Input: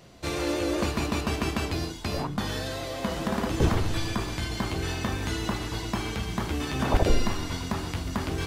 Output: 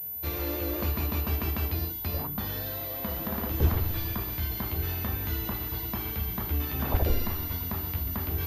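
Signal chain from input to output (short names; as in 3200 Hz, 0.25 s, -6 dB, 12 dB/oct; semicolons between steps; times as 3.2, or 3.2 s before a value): bell 75 Hz +11.5 dB 0.62 oct; pulse-width modulation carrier 14000 Hz; gain -6.5 dB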